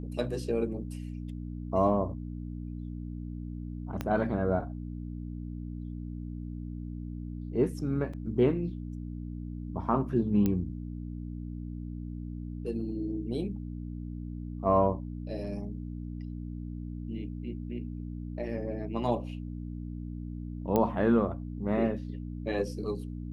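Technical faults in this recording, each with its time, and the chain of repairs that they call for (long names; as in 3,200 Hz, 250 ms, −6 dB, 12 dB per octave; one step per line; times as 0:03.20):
mains hum 60 Hz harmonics 5 −38 dBFS
0:04.01: click −18 dBFS
0:08.13–0:08.14: drop-out 5.1 ms
0:10.46: click −16 dBFS
0:20.76: click −14 dBFS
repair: click removal
hum removal 60 Hz, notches 5
repair the gap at 0:08.13, 5.1 ms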